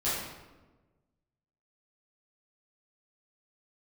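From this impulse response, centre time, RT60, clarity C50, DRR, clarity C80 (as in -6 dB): 76 ms, 1.2 s, 0.0 dB, -12.0 dB, 3.0 dB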